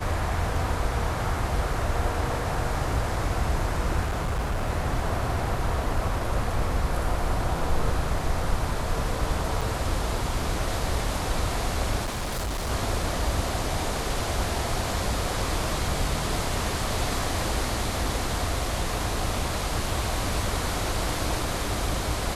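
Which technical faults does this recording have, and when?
0:04.05–0:04.70: clipping −23 dBFS
0:09.61–0:09.62: drop-out 5.6 ms
0:12.04–0:12.70: clipping −26 dBFS

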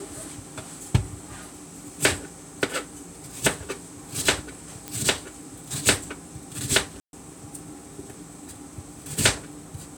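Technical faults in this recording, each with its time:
0:04.88: click −15 dBFS
0:07.00–0:07.13: drop-out 131 ms

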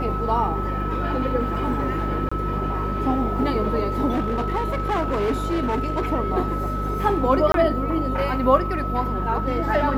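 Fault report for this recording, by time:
mains hum 50 Hz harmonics 8 −27 dBFS
whistle 1,300 Hz −28 dBFS
0:02.29–0:02.31: drop-out 25 ms
0:04.11–0:06.02: clipping −18.5 dBFS
0:07.52–0:07.54: drop-out 22 ms

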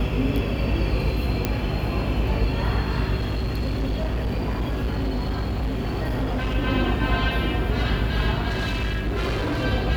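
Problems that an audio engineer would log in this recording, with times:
mains hum 50 Hz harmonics 6 −27 dBFS
0:01.45: click −8 dBFS
0:03.19–0:06.56: clipping −21 dBFS
0:08.48–0:09.65: clipping −21 dBFS

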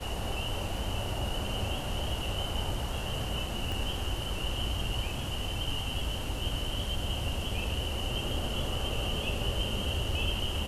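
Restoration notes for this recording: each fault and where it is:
0:03.72: click

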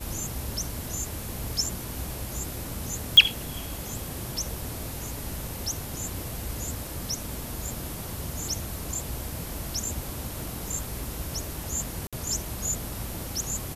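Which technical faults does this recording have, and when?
0:03.17: click −5 dBFS
0:12.07–0:12.13: drop-out 56 ms

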